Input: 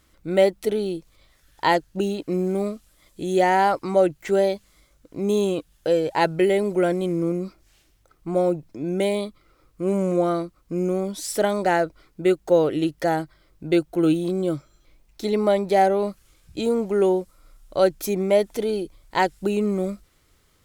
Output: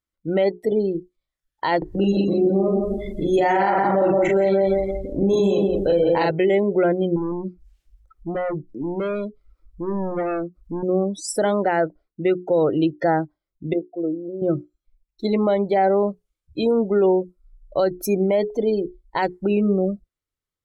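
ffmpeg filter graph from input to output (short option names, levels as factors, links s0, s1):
-filter_complex "[0:a]asettb=1/sr,asplit=3[s0][s1][s2];[s0]atrim=end=1.784[s3];[s1]atrim=start=1.78:end=6.31,asetpts=PTS-STARTPTS,afade=t=in:d=0.004:c=qsin,afade=t=out:st=4.526:d=0.004:c=qsin,acompressor=mode=upward:threshold=0.0708:ratio=2.5:attack=3.2:release=140:knee=2.83:detection=peak,asplit=2[s4][s5];[s5]adelay=41,volume=0.794[s6];[s4][s6]amix=inputs=2:normalize=0,atrim=end_sample=199773,aecho=1:1:170|340|510|680|850:0.631|0.265|0.111|0.0467|0.0196,atrim=end_sample=199773[s7];[s2]atrim=start=6.306[s8];[s3][s7]acrossfade=d=0.004:c1=hsin:c2=qsin[s9];[s9][s8]acrossfade=d=0.004:c1=qsin:c2=hsin,asettb=1/sr,asplit=3[s10][s11][s12];[s10]atrim=end=7.164[s13];[s11]atrim=start=7.16:end=10.83,asetpts=PTS-STARTPTS,afade=t=in:d=0.004:c=qsin,afade=t=out:st=3.666:d=0.004:c=qsin,acompressor=mode=upward:threshold=0.0158:ratio=2.5:attack=3.2:release=140:knee=2.83:detection=peak,asoftclip=type=hard:threshold=0.0473[s14];[s12]atrim=start=10.826[s15];[s13][s14]acrossfade=d=0.004:c1=hsin:c2=qsin[s16];[s16][s15]acrossfade=d=0.004:c1=qsin:c2=hsin,asettb=1/sr,asplit=3[s17][s18][s19];[s17]atrim=end=13.734[s20];[s18]atrim=start=13.73:end=14.42,asetpts=PTS-STARTPTS,afade=t=in:d=0.004:c=qsin,afade=t=out:st=0.686:d=0.004:c=qsin,bandpass=f=520:t=q:w=2.7,aecho=1:1:1:0.46,atrim=end_sample=30429[s21];[s19]atrim=start=14.416[s22];[s20][s21]acrossfade=d=0.004:c1=hsin:c2=qsin[s23];[s23][s22]acrossfade=d=0.004:c1=qsin:c2=hsin,bandreject=f=60:t=h:w=6,bandreject=f=120:t=h:w=6,bandreject=f=180:t=h:w=6,bandreject=f=240:t=h:w=6,bandreject=f=300:t=h:w=6,bandreject=f=360:t=h:w=6,bandreject=f=420:t=h:w=6,afftdn=nr=33:nf=-32,alimiter=limit=0.168:level=0:latency=1:release=48,volume=1.68"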